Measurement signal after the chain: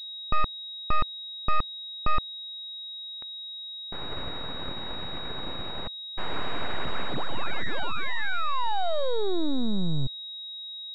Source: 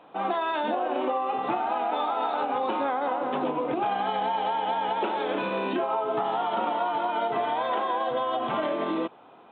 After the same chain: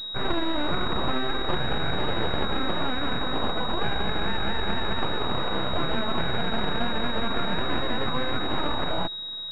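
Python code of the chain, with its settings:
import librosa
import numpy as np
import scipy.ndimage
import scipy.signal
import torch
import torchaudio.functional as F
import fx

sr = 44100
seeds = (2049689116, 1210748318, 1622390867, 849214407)

y = fx.tracing_dist(x, sr, depth_ms=0.25)
y = np.abs(y)
y = fx.pwm(y, sr, carrier_hz=3800.0)
y = F.gain(torch.from_numpy(y), 4.0).numpy()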